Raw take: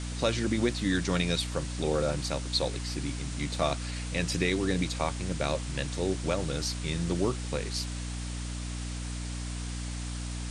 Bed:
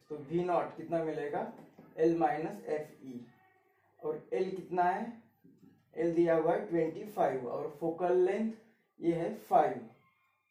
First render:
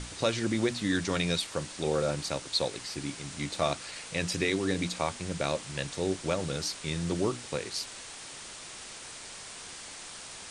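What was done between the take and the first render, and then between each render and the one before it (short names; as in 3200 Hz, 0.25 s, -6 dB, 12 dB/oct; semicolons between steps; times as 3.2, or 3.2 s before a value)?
notches 60/120/180/240/300 Hz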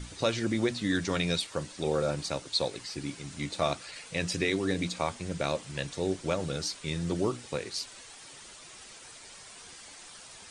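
denoiser 8 dB, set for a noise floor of -45 dBFS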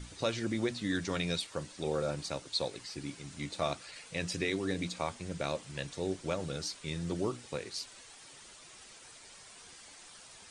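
gain -4.5 dB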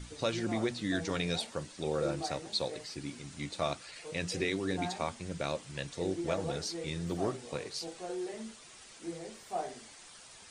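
add bed -10 dB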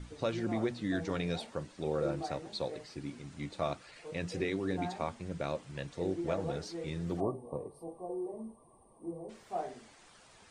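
7.2–9.29 spectral gain 1200–8300 Hz -28 dB; high shelf 2700 Hz -11.5 dB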